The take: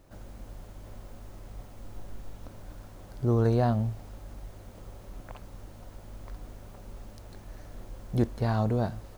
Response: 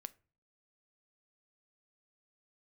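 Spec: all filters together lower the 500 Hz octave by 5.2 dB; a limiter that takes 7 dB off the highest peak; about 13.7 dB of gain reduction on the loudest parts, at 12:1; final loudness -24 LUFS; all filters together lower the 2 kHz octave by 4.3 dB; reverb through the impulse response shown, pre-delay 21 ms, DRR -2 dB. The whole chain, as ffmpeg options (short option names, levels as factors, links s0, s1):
-filter_complex "[0:a]equalizer=f=500:t=o:g=-6.5,equalizer=f=2000:t=o:g=-5.5,acompressor=threshold=0.0178:ratio=12,alimiter=level_in=3.35:limit=0.0631:level=0:latency=1,volume=0.299,asplit=2[s0][s1];[1:a]atrim=start_sample=2205,adelay=21[s2];[s1][s2]afir=irnorm=-1:irlink=0,volume=2.24[s3];[s0][s3]amix=inputs=2:normalize=0,volume=8.91"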